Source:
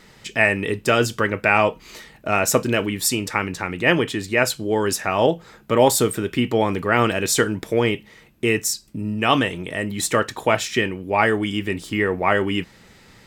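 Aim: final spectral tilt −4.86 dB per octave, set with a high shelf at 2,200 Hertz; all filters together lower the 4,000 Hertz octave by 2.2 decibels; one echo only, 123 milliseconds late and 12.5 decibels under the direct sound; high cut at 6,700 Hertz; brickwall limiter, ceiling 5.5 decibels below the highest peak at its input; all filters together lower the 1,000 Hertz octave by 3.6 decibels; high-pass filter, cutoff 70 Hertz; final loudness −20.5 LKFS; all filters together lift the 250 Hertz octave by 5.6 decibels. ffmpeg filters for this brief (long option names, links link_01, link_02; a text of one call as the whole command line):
ffmpeg -i in.wav -af "highpass=70,lowpass=6700,equalizer=frequency=250:width_type=o:gain=7.5,equalizer=frequency=1000:width_type=o:gain=-6,highshelf=frequency=2200:gain=3.5,equalizer=frequency=4000:width_type=o:gain=-6,alimiter=limit=-6.5dB:level=0:latency=1,aecho=1:1:123:0.237" out.wav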